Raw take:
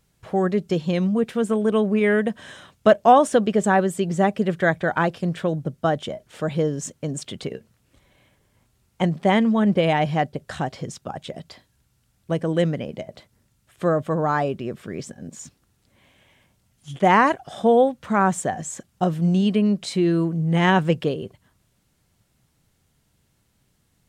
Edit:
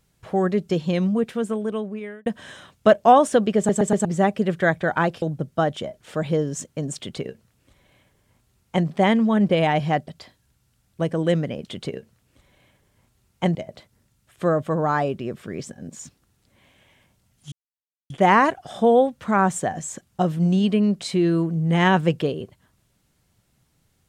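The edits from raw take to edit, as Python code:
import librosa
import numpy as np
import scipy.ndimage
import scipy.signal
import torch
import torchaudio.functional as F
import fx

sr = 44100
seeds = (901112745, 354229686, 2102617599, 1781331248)

y = fx.edit(x, sr, fx.fade_out_span(start_s=1.1, length_s=1.16),
    fx.stutter_over(start_s=3.57, slice_s=0.12, count=4),
    fx.cut(start_s=5.22, length_s=0.26),
    fx.duplicate(start_s=7.23, length_s=1.9, to_s=12.95),
    fx.cut(start_s=10.34, length_s=1.04),
    fx.insert_silence(at_s=16.92, length_s=0.58), tone=tone)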